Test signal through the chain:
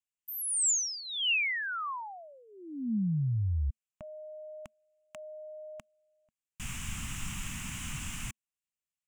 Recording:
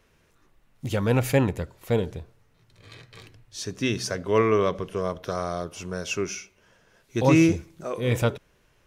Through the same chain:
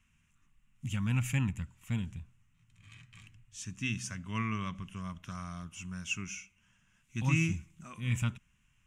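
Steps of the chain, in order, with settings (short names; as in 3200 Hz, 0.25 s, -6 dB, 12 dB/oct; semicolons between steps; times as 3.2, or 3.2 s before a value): EQ curve 220 Hz 0 dB, 460 Hz -29 dB, 1100 Hz -6 dB, 1700 Hz -6 dB, 2800 Hz +3 dB, 4300 Hz -15 dB, 7300 Hz +4 dB, 13000 Hz -10 dB; gain -5.5 dB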